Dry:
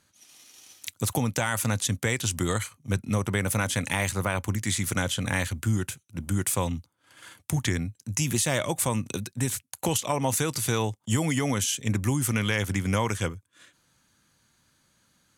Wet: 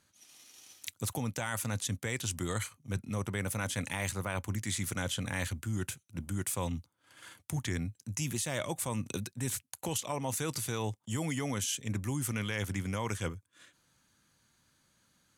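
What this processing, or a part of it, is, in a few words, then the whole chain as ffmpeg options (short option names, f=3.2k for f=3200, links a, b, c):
compression on the reversed sound: -af "areverse,acompressor=threshold=-26dB:ratio=6,areverse,volume=-4dB"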